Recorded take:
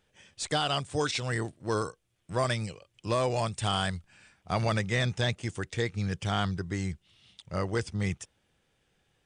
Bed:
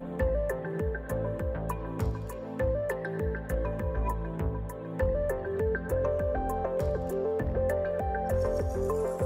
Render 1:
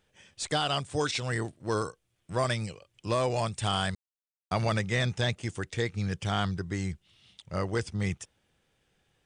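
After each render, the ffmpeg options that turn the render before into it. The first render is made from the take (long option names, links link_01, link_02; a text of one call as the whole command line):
ffmpeg -i in.wav -filter_complex "[0:a]asplit=3[link_01][link_02][link_03];[link_01]atrim=end=3.95,asetpts=PTS-STARTPTS,afade=type=out:start_time=3.946:duration=0.004:curve=hsin[link_04];[link_02]atrim=start=3.95:end=4.51,asetpts=PTS-STARTPTS,volume=0[link_05];[link_03]atrim=start=4.51,asetpts=PTS-STARTPTS,afade=type=in:duration=0.004:curve=hsin[link_06];[link_04][link_05][link_06]concat=n=3:v=0:a=1" out.wav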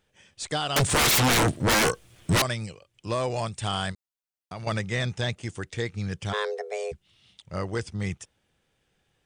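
ffmpeg -i in.wav -filter_complex "[0:a]asettb=1/sr,asplit=3[link_01][link_02][link_03];[link_01]atrim=end=0.764[link_04];[link_02]atrim=start=0.76:end=2.42,asetpts=PTS-STARTPTS,afade=type=in:duration=0.004:curve=qsin,afade=type=out:start_time=1.656:duration=0.004:curve=qsin,aeval=exprs='0.133*sin(PI/2*7.94*val(0)/0.133)':channel_layout=same[link_05];[link_03]atrim=start=2.416[link_06];[link_04][link_05]acrossfade=duration=0.004:curve1=hsin:curve2=qsin[link_07];[link_07][link_06]acrossfade=duration=0.004:curve1=qsin:curve2=hsin,asettb=1/sr,asplit=3[link_08][link_09][link_10];[link_08]atrim=end=3.924[link_11];[link_09]atrim=start=3.92:end=4.67,asetpts=PTS-STARTPTS,afade=type=in:duration=0.004:curve=qsin,afade=type=out:start_time=0.746:duration=0.004:curve=qsin,acompressor=threshold=-41dB:ratio=2:attack=3.2:release=140:knee=1:detection=peak[link_12];[link_10]atrim=start=4.666[link_13];[link_11][link_12]acrossfade=duration=0.004:curve1=hsin:curve2=qsin[link_14];[link_14][link_13]acrossfade=duration=0.004:curve1=qsin:curve2=hsin,asplit=3[link_15][link_16][link_17];[link_15]afade=type=out:start_time=6.32:duration=0.02[link_18];[link_16]afreqshift=320,afade=type=in:start_time=6.32:duration=0.02,afade=type=out:start_time=6.91:duration=0.02[link_19];[link_17]afade=type=in:start_time=6.91:duration=0.02[link_20];[link_18][link_19][link_20]amix=inputs=3:normalize=0" out.wav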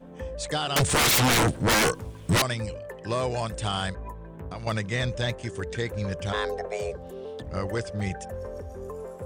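ffmpeg -i in.wav -i bed.wav -filter_complex "[1:a]volume=-8dB[link_01];[0:a][link_01]amix=inputs=2:normalize=0" out.wav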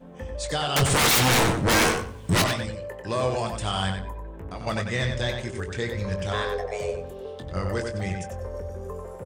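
ffmpeg -i in.wav -filter_complex "[0:a]asplit=2[link_01][link_02];[link_02]adelay=22,volume=-8.5dB[link_03];[link_01][link_03]amix=inputs=2:normalize=0,asplit=2[link_04][link_05];[link_05]adelay=94,lowpass=frequency=4700:poles=1,volume=-5dB,asplit=2[link_06][link_07];[link_07]adelay=94,lowpass=frequency=4700:poles=1,volume=0.23,asplit=2[link_08][link_09];[link_09]adelay=94,lowpass=frequency=4700:poles=1,volume=0.23[link_10];[link_04][link_06][link_08][link_10]amix=inputs=4:normalize=0" out.wav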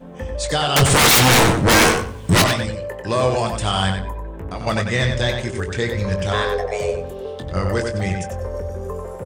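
ffmpeg -i in.wav -af "volume=7dB" out.wav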